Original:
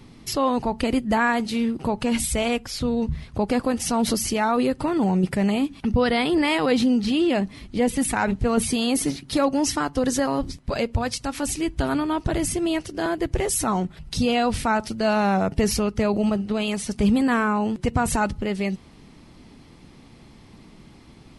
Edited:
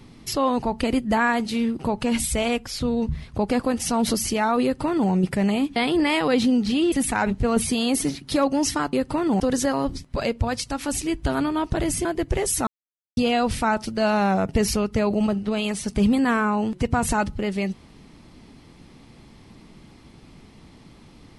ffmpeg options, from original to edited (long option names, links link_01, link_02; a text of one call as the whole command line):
ffmpeg -i in.wav -filter_complex "[0:a]asplit=8[link_01][link_02][link_03][link_04][link_05][link_06][link_07][link_08];[link_01]atrim=end=5.762[link_09];[link_02]atrim=start=6.138:end=7.302[link_10];[link_03]atrim=start=7.928:end=9.942[link_11];[link_04]atrim=start=4.628:end=5.102[link_12];[link_05]atrim=start=9.938:end=12.592[link_13];[link_06]atrim=start=13.078:end=13.7,asetpts=PTS-STARTPTS,afade=type=out:start_time=0.618:duration=0.004:curve=hsin[link_14];[link_07]atrim=start=13.7:end=14.2,asetpts=PTS-STARTPTS,volume=0[link_15];[link_08]atrim=start=14.2,asetpts=PTS-STARTPTS,afade=type=in:duration=0.004:curve=hsin[link_16];[link_09][link_10]acrossfade=duration=0.004:curve1=hsin:curve2=hsin[link_17];[link_17][link_11]acrossfade=duration=0.004:curve1=hsin:curve2=hsin[link_18];[link_18][link_12]acrossfade=duration=0.004:curve1=hsin:curve2=hsin[link_19];[link_19][link_13]acrossfade=duration=0.004:curve1=hsin:curve2=hsin[link_20];[link_14][link_15][link_16]concat=n=3:v=0:a=1[link_21];[link_20][link_21]acrossfade=duration=0.004:curve1=hsin:curve2=hsin" out.wav